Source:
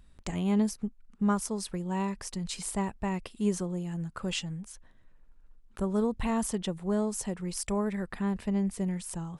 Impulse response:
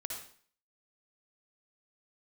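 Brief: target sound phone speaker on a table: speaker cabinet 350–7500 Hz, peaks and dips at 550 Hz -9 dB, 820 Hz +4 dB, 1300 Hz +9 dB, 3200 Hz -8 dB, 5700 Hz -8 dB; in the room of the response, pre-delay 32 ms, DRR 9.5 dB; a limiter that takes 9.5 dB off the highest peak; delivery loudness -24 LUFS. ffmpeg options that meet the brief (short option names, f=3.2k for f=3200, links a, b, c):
-filter_complex "[0:a]alimiter=level_in=2dB:limit=-24dB:level=0:latency=1,volume=-2dB,asplit=2[a][b];[1:a]atrim=start_sample=2205,adelay=32[c];[b][c]afir=irnorm=-1:irlink=0,volume=-9.5dB[d];[a][d]amix=inputs=2:normalize=0,highpass=f=350:w=0.5412,highpass=f=350:w=1.3066,equalizer=f=550:t=q:w=4:g=-9,equalizer=f=820:t=q:w=4:g=4,equalizer=f=1.3k:t=q:w=4:g=9,equalizer=f=3.2k:t=q:w=4:g=-8,equalizer=f=5.7k:t=q:w=4:g=-8,lowpass=f=7.5k:w=0.5412,lowpass=f=7.5k:w=1.3066,volume=18dB"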